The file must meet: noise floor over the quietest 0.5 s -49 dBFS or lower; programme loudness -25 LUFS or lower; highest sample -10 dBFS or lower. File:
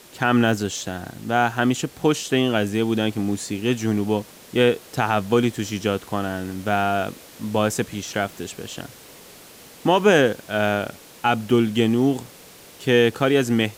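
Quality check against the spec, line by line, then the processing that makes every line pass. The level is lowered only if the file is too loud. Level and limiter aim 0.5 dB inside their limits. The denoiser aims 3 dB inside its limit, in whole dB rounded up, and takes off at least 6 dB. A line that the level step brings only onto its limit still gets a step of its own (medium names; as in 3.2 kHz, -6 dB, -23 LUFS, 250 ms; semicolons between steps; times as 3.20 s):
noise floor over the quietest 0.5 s -45 dBFS: fail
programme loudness -22.0 LUFS: fail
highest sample -5.5 dBFS: fail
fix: noise reduction 6 dB, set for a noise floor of -45 dBFS; trim -3.5 dB; peak limiter -10.5 dBFS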